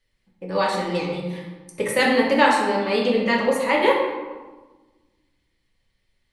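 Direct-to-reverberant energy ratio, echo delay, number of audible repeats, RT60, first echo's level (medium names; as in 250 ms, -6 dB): -3.5 dB, no echo, no echo, 1.3 s, no echo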